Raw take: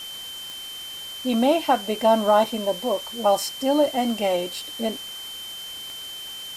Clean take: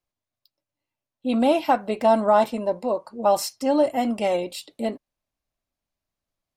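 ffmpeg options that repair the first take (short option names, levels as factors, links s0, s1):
-af "adeclick=t=4,bandreject=f=3100:w=30,afftdn=nr=30:nf=-36"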